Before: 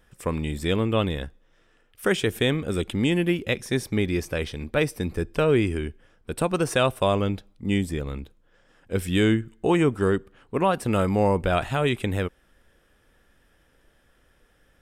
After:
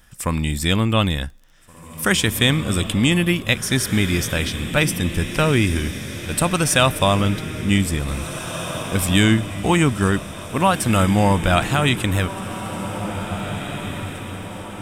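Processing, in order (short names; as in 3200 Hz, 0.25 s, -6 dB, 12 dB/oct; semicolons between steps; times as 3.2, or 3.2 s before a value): bell 430 Hz -11 dB 0.81 oct; on a send: diffused feedback echo 1.926 s, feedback 51%, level -10 dB; on the sum: crackle 12/s -51 dBFS; tone controls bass 0 dB, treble +7 dB; gain +7.5 dB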